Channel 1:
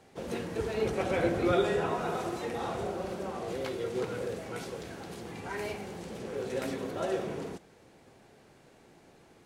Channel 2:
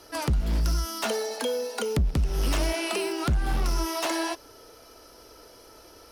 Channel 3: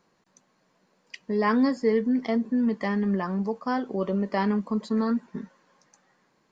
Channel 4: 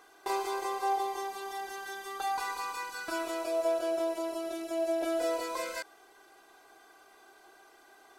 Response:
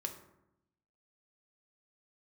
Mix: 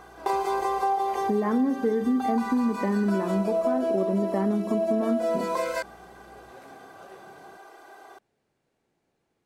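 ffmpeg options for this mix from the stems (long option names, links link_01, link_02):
-filter_complex "[0:a]volume=-17.5dB[link_01];[1:a]bandpass=frequency=610:width_type=q:width=0.72:csg=0,adelay=50,volume=-12.5dB[link_02];[2:a]lowpass=1700,equalizer=frequency=310:width_type=o:width=2.1:gain=11,aeval=exprs='val(0)+0.00126*(sin(2*PI*60*n/s)+sin(2*PI*2*60*n/s)/2+sin(2*PI*3*60*n/s)/3+sin(2*PI*4*60*n/s)/4+sin(2*PI*5*60*n/s)/5)':channel_layout=same,volume=-3.5dB,asplit=2[link_03][link_04];[link_04]volume=-4.5dB[link_05];[3:a]equalizer=frequency=640:width_type=o:width=2.6:gain=10.5,volume=2dB[link_06];[4:a]atrim=start_sample=2205[link_07];[link_05][link_07]afir=irnorm=-1:irlink=0[link_08];[link_01][link_02][link_03][link_06][link_08]amix=inputs=5:normalize=0,acompressor=threshold=-23dB:ratio=4"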